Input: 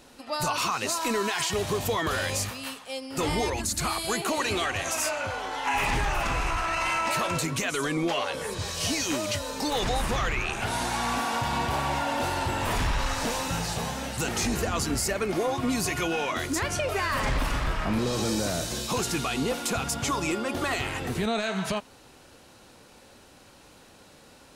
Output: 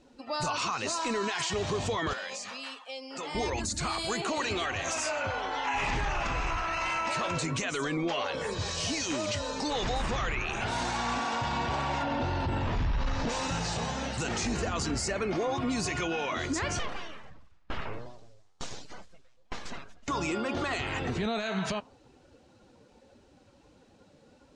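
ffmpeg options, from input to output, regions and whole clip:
ffmpeg -i in.wav -filter_complex "[0:a]asettb=1/sr,asplit=3[link_01][link_02][link_03];[link_01]atrim=end=2.134[link_04];[link_02]atrim=start=2.13:end=3.35,asetpts=PTS-STARTPTS,afade=type=in:duration=0.004:curve=qsin,afade=type=out:start_time=1.216:duration=0.004:curve=qsin,highpass=frequency=210:width=0.5412,highpass=frequency=210:width=1.3066,equalizer=frequency=320:width_type=o:width=0.9:gain=-9,acompressor=threshold=-34dB:ratio=4:attack=3.2:release=140:knee=1:detection=peak[link_05];[link_03]atrim=start=3.346[link_06];[link_04][link_05]acrossfade=duration=0.004:curve1=hsin:curve2=qsin[link_07];[link_07][link_06]acrossfade=duration=0.004:curve1=qsin:curve2=hsin,asettb=1/sr,asplit=3[link_08][link_09][link_10];[link_08]atrim=end=12.034[link_11];[link_09]atrim=start=12.03:end=13.29,asetpts=PTS-STARTPTS,afade=type=in:duration=0.004:curve=qsin,afade=type=out:start_time=1.256:duration=0.004:curve=qsin,lowshelf=frequency=340:gain=11.5,acrossover=split=6200[link_12][link_13];[link_13]acompressor=threshold=-54dB:ratio=4:attack=1:release=60[link_14];[link_12][link_14]amix=inputs=2:normalize=0[link_15];[link_10]atrim=start=13.286[link_16];[link_11][link_15]acrossfade=duration=0.004:curve1=hsin:curve2=qsin[link_17];[link_17][link_16]acrossfade=duration=0.004:curve1=qsin:curve2=hsin,asettb=1/sr,asplit=3[link_18][link_19][link_20];[link_18]atrim=end=16.794[link_21];[link_19]atrim=start=16.79:end=20.08,asetpts=PTS-STARTPTS,afade=type=in:duration=0.004:curve=qsin,afade=type=out:start_time=3.286:duration=0.004:curve=qsin,aeval=exprs='abs(val(0))':channel_layout=same,aeval=exprs='val(0)*pow(10,-34*if(lt(mod(1.1*n/s,1),2*abs(1.1)/1000),1-mod(1.1*n/s,1)/(2*abs(1.1)/1000),(mod(1.1*n/s,1)-2*abs(1.1)/1000)/(1-2*abs(1.1)/1000))/20)':channel_layout=same[link_22];[link_20]atrim=start=20.076[link_23];[link_21][link_22]acrossfade=duration=0.004:curve1=hsin:curve2=qsin[link_24];[link_24][link_23]acrossfade=duration=0.004:curve1=qsin:curve2=hsin,lowpass=frequency=7900:width=0.5412,lowpass=frequency=7900:width=1.3066,afftdn=noise_reduction=13:noise_floor=-47,alimiter=limit=-23dB:level=0:latency=1:release=25" out.wav

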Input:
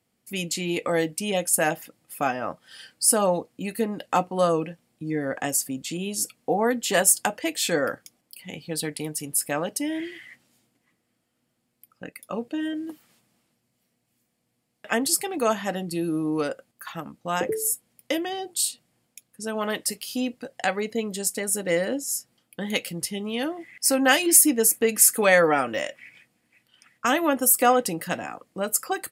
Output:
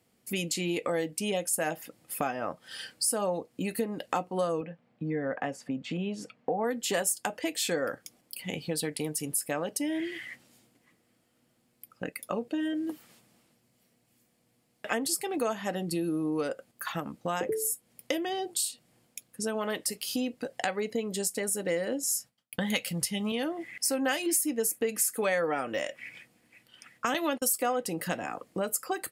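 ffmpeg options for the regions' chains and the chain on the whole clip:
ffmpeg -i in.wav -filter_complex "[0:a]asettb=1/sr,asplit=3[link_01][link_02][link_03];[link_01]atrim=end=4.614[link_04];[link_02]atrim=start=4.61:end=6.64,asetpts=PTS-STARTPTS,afade=type=in:duration=0.004:curve=qsin,afade=type=out:start_time=2.026:duration=0.004:curve=qsin,highpass=120,lowpass=2100,equalizer=frequency=350:width=3.6:gain=-8.5[link_05];[link_03]atrim=start=6.636[link_06];[link_04][link_05]acrossfade=duration=0.004:curve1=hsin:curve2=qsin[link_07];[link_07][link_06]acrossfade=duration=0.004:curve1=qsin:curve2=hsin,asettb=1/sr,asplit=3[link_08][link_09][link_10];[link_08]atrim=end=22.034[link_11];[link_09]atrim=start=22.03:end=23.32,asetpts=PTS-STARTPTS,afade=type=in:duration=0.004:curve=qsin,afade=type=out:start_time=1.286:duration=0.004:curve=qsin,agate=range=-33dB:threshold=-55dB:ratio=3:release=100:detection=peak,equalizer=frequency=370:width_type=o:width=0.67:gain=-13,acontrast=46[link_12];[link_10]atrim=start=23.316[link_13];[link_11][link_12]acrossfade=duration=0.004:curve1=hsin:curve2=qsin[link_14];[link_14][link_13]acrossfade=duration=0.004:curve1=qsin:curve2=hsin,asettb=1/sr,asplit=3[link_15][link_16][link_17];[link_15]atrim=end=27.144[link_18];[link_16]atrim=start=27.14:end=27.58,asetpts=PTS-STARTPTS,afade=type=in:duration=0.004:curve=qsin,afade=type=out:start_time=0.436:duration=0.004:curve=qsin,agate=range=-35dB:threshold=-29dB:ratio=16:release=100:detection=peak,equalizer=frequency=4200:width=1.1:gain=14[link_19];[link_17]atrim=start=27.576[link_20];[link_18][link_19]acrossfade=duration=0.004:curve1=hsin:curve2=qsin[link_21];[link_21][link_20]acrossfade=duration=0.004:curve1=qsin:curve2=hsin,equalizer=frequency=450:width=1.5:gain=2.5,acompressor=threshold=-34dB:ratio=3,volume=3.5dB" out.wav

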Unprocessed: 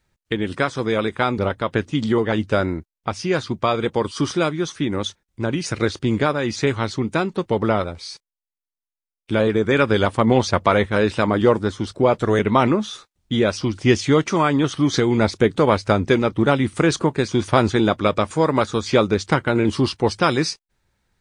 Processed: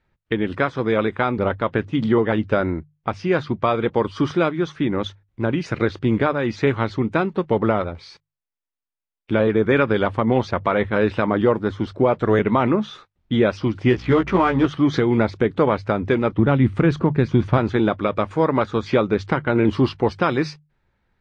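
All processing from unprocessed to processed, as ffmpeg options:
ffmpeg -i in.wav -filter_complex "[0:a]asettb=1/sr,asplit=3[link_01][link_02][link_03];[link_01]atrim=end=13.904[link_04];[link_02]atrim=start=13.9:end=14.66,asetpts=PTS-STARTPTS,afade=type=in:duration=0.004:curve=qsin,afade=type=out:start_time=0.756:duration=0.004:curve=qsin,aeval=exprs='val(0)+0.0112*(sin(2*PI*60*n/s)+sin(2*PI*2*60*n/s)/2+sin(2*PI*3*60*n/s)/3+sin(2*PI*4*60*n/s)/4+sin(2*PI*5*60*n/s)/5)':channel_layout=same,adynamicsmooth=sensitivity=4:basefreq=1100,asplit=2[link_05][link_06];[link_06]adelay=16,volume=-3dB[link_07];[link_05][link_07]amix=inputs=2:normalize=0,atrim=end_sample=33516[link_08];[link_03]atrim=start=14.656[link_09];[link_04][link_08]acrossfade=duration=0.004:curve1=hsin:curve2=qsin[link_10];[link_10][link_09]acrossfade=duration=0.004:curve1=qsin:curve2=hsin,asettb=1/sr,asplit=3[link_11][link_12][link_13];[link_11]atrim=end=16.394[link_14];[link_12]atrim=start=16.39:end=17.58,asetpts=PTS-STARTPTS,afade=type=in:duration=0.004:curve=qsin,afade=type=out:start_time=1.186:duration=0.004:curve=qsin,bass=frequency=250:gain=9,treble=frequency=4000:gain=-3,asoftclip=type=hard:threshold=-2.5dB[link_15];[link_13]atrim=start=17.576[link_16];[link_14][link_15]acrossfade=duration=0.004:curve1=hsin:curve2=qsin[link_17];[link_17][link_16]acrossfade=duration=0.004:curve1=qsin:curve2=hsin,lowpass=2600,bandreject=frequency=50:width_type=h:width=6,bandreject=frequency=100:width_type=h:width=6,bandreject=frequency=150:width_type=h:width=6,alimiter=limit=-8dB:level=0:latency=1:release=290,volume=1.5dB" out.wav

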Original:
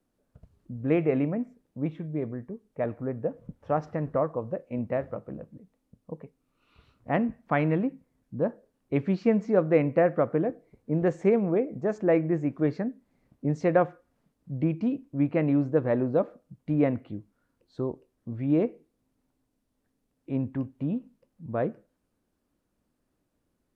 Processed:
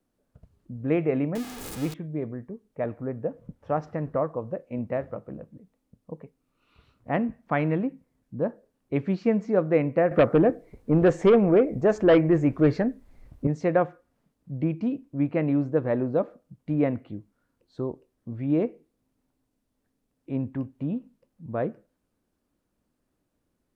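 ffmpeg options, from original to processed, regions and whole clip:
ffmpeg -i in.wav -filter_complex "[0:a]asettb=1/sr,asplit=3[link_01][link_02][link_03];[link_01]atrim=end=1.354[link_04];[link_02]atrim=start=1.35:end=1.94,asetpts=PTS-STARTPTS,afade=type=in:duration=0.004:curve=qsin,afade=type=out:start_time=0.586:duration=0.004:curve=qsin,aeval=exprs='val(0)+0.5*0.0211*sgn(val(0))':channel_layout=same,highshelf=frequency=2600:gain=7.5,aecho=1:1:2.4:0.36,atrim=end_sample=26019[link_05];[link_03]atrim=start=1.936[link_06];[link_04][link_05]acrossfade=duration=0.004:curve1=hsin:curve2=qsin[link_07];[link_07][link_06]acrossfade=duration=0.004:curve1=qsin:curve2=hsin,asettb=1/sr,asplit=3[link_08][link_09][link_10];[link_08]atrim=end=10.114[link_11];[link_09]atrim=start=10.11:end=13.47,asetpts=PTS-STARTPTS,afade=type=in:duration=0.004:curve=qsin,afade=type=out:start_time=3.356:duration=0.004:curve=qsin,asubboost=boost=11.5:cutoff=63,aeval=exprs='0.251*sin(PI/2*1.78*val(0)/0.251)':channel_layout=same[link_12];[link_10]atrim=start=13.466[link_13];[link_11][link_12]acrossfade=duration=0.004:curve1=hsin:curve2=qsin[link_14];[link_14][link_13]acrossfade=duration=0.004:curve1=qsin:curve2=hsin" out.wav

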